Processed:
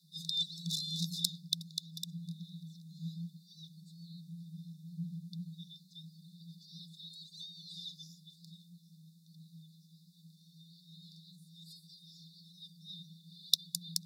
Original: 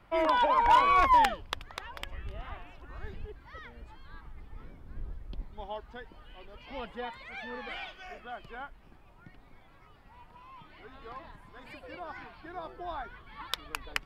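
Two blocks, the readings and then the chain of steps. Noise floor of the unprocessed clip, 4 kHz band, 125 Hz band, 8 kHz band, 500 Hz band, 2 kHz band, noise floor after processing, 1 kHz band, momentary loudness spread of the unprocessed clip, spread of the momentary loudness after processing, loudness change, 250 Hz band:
-57 dBFS, +4.5 dB, +3.5 dB, n/a, under -40 dB, under -40 dB, -63 dBFS, under -40 dB, 25 LU, 22 LU, -10.0 dB, -1.0 dB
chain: frequency shift +150 Hz; brick-wall FIR band-stop 160–3500 Hz; gain +8.5 dB

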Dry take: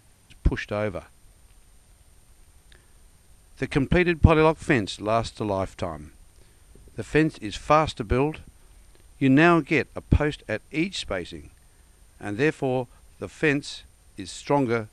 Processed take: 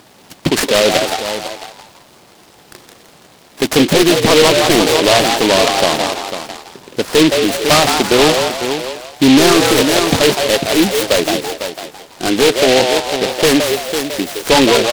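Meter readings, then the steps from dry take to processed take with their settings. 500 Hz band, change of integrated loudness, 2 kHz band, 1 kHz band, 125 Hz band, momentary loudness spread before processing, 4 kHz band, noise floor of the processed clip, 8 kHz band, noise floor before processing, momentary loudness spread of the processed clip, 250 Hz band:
+13.5 dB, +11.5 dB, +11.0 dB, +11.5 dB, +2.5 dB, 21 LU, +23.0 dB, -45 dBFS, +25.0 dB, -57 dBFS, 14 LU, +10.5 dB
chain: Chebyshev high-pass 170 Hz, order 2; high shelf 5600 Hz -9.5 dB; echo 0.499 s -14.5 dB; overdrive pedal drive 28 dB, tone 1100 Hz, clips at -4 dBFS; treble ducked by the level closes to 2600 Hz, closed at -13 dBFS; frequency-shifting echo 0.167 s, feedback 39%, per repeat +120 Hz, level -5.5 dB; maximiser +5.5 dB; noise-modulated delay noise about 2900 Hz, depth 0.14 ms; gain -1 dB

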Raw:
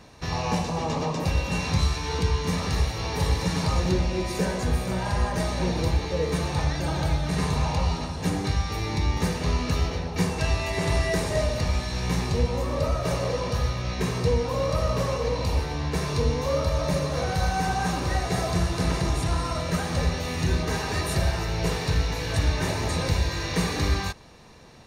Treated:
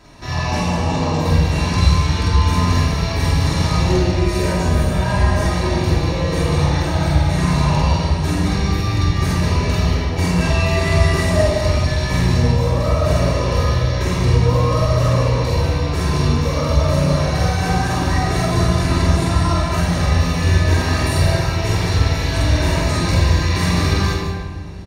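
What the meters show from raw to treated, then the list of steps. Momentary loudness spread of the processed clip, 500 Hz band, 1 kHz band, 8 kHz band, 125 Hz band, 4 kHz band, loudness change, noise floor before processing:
3 LU, +6.5 dB, +7.5 dB, +5.5 dB, +10.5 dB, +7.0 dB, +9.0 dB, -32 dBFS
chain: loudspeakers at several distances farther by 16 m -1 dB, 67 m -8 dB; flange 0.33 Hz, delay 6.8 ms, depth 7.1 ms, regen -63%; shoebox room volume 1900 m³, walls mixed, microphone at 2.9 m; gain +4 dB

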